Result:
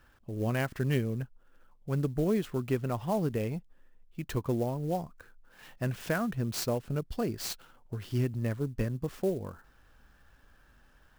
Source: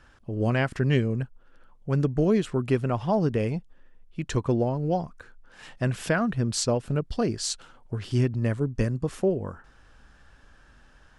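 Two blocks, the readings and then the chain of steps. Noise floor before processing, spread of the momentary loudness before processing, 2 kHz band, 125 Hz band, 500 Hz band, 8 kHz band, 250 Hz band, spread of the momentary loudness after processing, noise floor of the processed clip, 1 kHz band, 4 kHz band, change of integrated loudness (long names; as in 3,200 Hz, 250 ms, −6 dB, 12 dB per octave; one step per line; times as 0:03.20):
−56 dBFS, 12 LU, −6.0 dB, −6.0 dB, −6.0 dB, −8.5 dB, −6.0 dB, 12 LU, −62 dBFS, −6.0 dB, −7.0 dB, −6.0 dB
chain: converter with an unsteady clock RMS 0.023 ms
level −6 dB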